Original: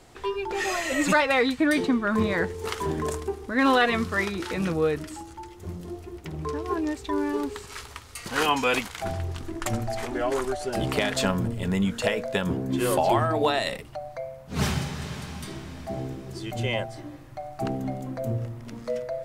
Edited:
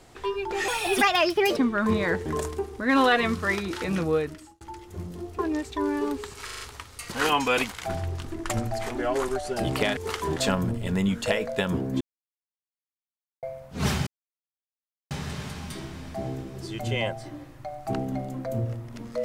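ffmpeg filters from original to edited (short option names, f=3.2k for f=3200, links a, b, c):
-filter_complex "[0:a]asplit=15[a][b][c][d][e][f][g][h][i][j][k][l][m][n][o];[a]atrim=end=0.684[p];[b]atrim=start=0.68:end=1.86,asetpts=PTS-STARTPTS,asetrate=58653,aresample=44100,atrim=end_sample=39126,asetpts=PTS-STARTPTS[q];[c]atrim=start=1.856:end=2.552[r];[d]atrim=start=2.948:end=5.3,asetpts=PTS-STARTPTS,afade=t=out:st=1.862:d=0.49[s];[e]atrim=start=5.3:end=6.082,asetpts=PTS-STARTPTS,afade=t=in:d=0.004:c=hsin[t];[f]atrim=start=6.708:end=7.812[u];[g]atrim=start=7.768:end=7.812[v];[h]atrim=start=7.768:end=7.812[w];[i]atrim=start=7.768:end=7.812[x];[j]atrim=start=7.768:end=11.132[y];[k]atrim=start=2.548:end=2.952[z];[l]atrim=start=11.128:end=12.77,asetpts=PTS-STARTPTS,afade=t=out:st=1.638:d=0.004:c=hsin[aa];[m]atrim=start=12.77:end=14.19,asetpts=PTS-STARTPTS,volume=0[ab];[n]atrim=start=14.19:end=14.83,asetpts=PTS-STARTPTS,afade=t=in:d=0.004:c=hsin,afade=t=out:st=0.636:d=0.004:c=hsin,apad=pad_dur=1.04[ac];[o]atrim=start=14.83,asetpts=PTS-STARTPTS,afade=t=in:d=0.004:c=hsin[ad];[p][q]acrossfade=d=0.004:c1=hsin:c2=hsin[ae];[ae][r]acrossfade=d=0.004:c1=hsin:c2=hsin[af];[s][t]concat=n=2:v=0:a=1[ag];[af][ag]acrossfade=d=0.004:c1=hsin:c2=hsin[ah];[ah][u]acrossfade=d=0.004:c1=hsin:c2=hsin[ai];[ai][v]acrossfade=d=0.004:c1=hsin:c2=hsin[aj];[aj][w]acrossfade=d=0.004:c1=hsin:c2=hsin[ak];[ak][x]acrossfade=d=0.004:c1=hsin:c2=hsin[al];[al][y]acrossfade=d=0.004:c1=hsin:c2=hsin[am];[am][z]acrossfade=d=0.004:c1=hsin:c2=hsin[an];[aa][ab][ac][ad]concat=n=4:v=0:a=1[ao];[an][ao]acrossfade=d=0.004:c1=hsin:c2=hsin"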